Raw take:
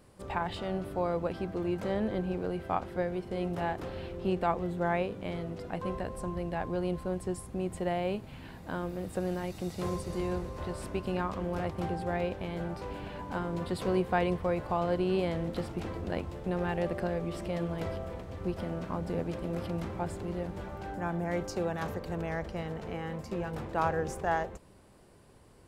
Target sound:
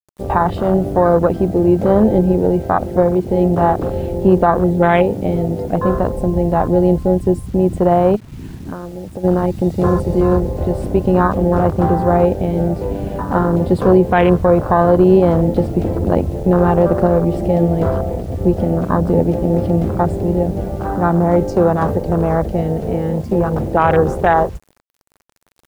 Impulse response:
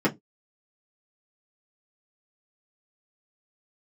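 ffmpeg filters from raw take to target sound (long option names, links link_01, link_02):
-filter_complex "[0:a]afwtdn=0.0178,asplit=3[link_01][link_02][link_03];[link_01]afade=type=out:start_time=8.15:duration=0.02[link_04];[link_02]acompressor=threshold=-44dB:ratio=20,afade=type=in:start_time=8.15:duration=0.02,afade=type=out:start_time=9.23:duration=0.02[link_05];[link_03]afade=type=in:start_time=9.23:duration=0.02[link_06];[link_04][link_05][link_06]amix=inputs=3:normalize=0,acrusher=bits=10:mix=0:aa=0.000001,alimiter=level_in=20.5dB:limit=-1dB:release=50:level=0:latency=1,volume=-1dB"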